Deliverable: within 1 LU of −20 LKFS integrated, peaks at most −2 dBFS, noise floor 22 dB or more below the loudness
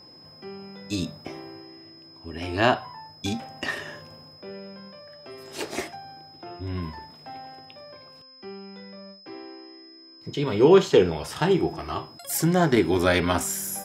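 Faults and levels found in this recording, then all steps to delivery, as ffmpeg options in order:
interfering tone 5,100 Hz; level of the tone −48 dBFS; integrated loudness −24.0 LKFS; sample peak −4.5 dBFS; target loudness −20.0 LKFS
→ -af "bandreject=frequency=5100:width=30"
-af "volume=4dB,alimiter=limit=-2dB:level=0:latency=1"

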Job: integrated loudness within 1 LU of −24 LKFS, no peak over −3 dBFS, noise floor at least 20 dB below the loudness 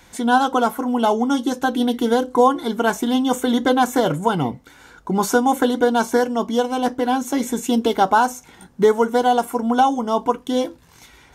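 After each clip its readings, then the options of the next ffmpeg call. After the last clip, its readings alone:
integrated loudness −19.5 LKFS; sample peak −3.0 dBFS; target loudness −24.0 LKFS
→ -af "volume=-4.5dB"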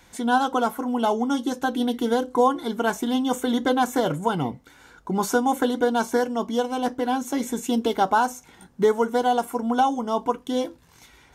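integrated loudness −24.0 LKFS; sample peak −7.5 dBFS; background noise floor −55 dBFS

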